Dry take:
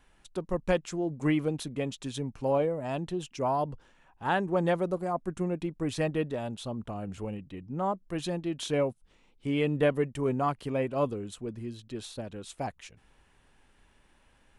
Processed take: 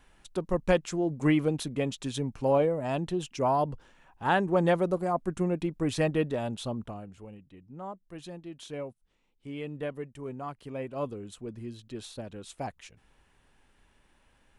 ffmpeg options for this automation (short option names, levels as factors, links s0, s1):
-af "volume=3.55,afade=t=out:st=6.69:d=0.41:silence=0.237137,afade=t=in:st=10.45:d=1.24:silence=0.375837"